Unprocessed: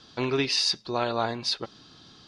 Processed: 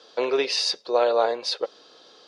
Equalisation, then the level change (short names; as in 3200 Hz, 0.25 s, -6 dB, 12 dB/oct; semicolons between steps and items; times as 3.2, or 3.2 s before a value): resonant high-pass 500 Hz, resonance Q 4.9; 0.0 dB